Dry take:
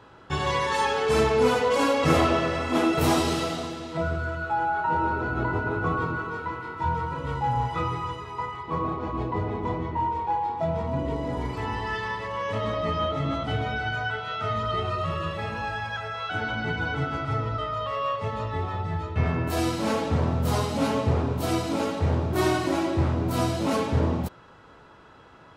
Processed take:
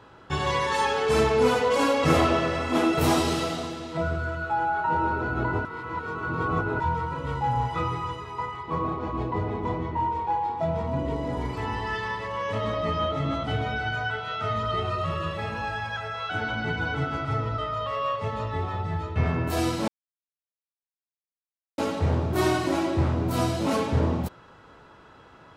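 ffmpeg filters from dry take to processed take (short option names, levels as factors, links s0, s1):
-filter_complex "[0:a]asplit=5[s0][s1][s2][s3][s4];[s0]atrim=end=5.652[s5];[s1]atrim=start=5.648:end=6.802,asetpts=PTS-STARTPTS,areverse[s6];[s2]atrim=start=6.798:end=19.88,asetpts=PTS-STARTPTS,afade=t=out:st=13.078:d=0.004:c=hsin[s7];[s3]atrim=start=19.88:end=21.78,asetpts=PTS-STARTPTS,volume=0[s8];[s4]atrim=start=21.78,asetpts=PTS-STARTPTS,afade=t=in:d=0.004:c=hsin[s9];[s5][s6]acrossfade=d=0.004:c1=hsin:c2=hsin[s10];[s7][s8][s9]concat=n=3:v=0:a=1[s11];[s10][s11]acrossfade=d=0.004:c1=hsin:c2=hsin"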